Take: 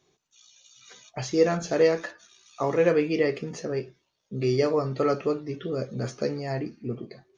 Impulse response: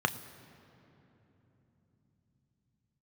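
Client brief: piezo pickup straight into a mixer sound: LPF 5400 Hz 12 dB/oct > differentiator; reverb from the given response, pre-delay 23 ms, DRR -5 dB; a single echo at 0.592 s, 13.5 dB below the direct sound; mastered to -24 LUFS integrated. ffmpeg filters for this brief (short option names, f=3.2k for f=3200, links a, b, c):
-filter_complex "[0:a]aecho=1:1:592:0.211,asplit=2[a][b];[1:a]atrim=start_sample=2205,adelay=23[c];[b][c]afir=irnorm=-1:irlink=0,volume=-4.5dB[d];[a][d]amix=inputs=2:normalize=0,lowpass=5.4k,aderivative,volume=17dB"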